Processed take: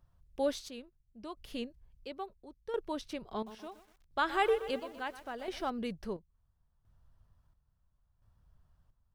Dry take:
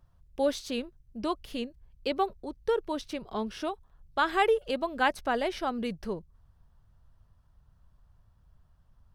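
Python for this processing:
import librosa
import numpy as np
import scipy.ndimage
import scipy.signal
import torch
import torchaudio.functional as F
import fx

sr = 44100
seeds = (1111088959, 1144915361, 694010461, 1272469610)

y = fx.chopper(x, sr, hz=0.73, depth_pct=65, duty_pct=50)
y = fx.echo_crushed(y, sr, ms=123, feedback_pct=55, bits=8, wet_db=-13.0, at=(3.34, 5.7))
y = y * 10.0 ** (-4.5 / 20.0)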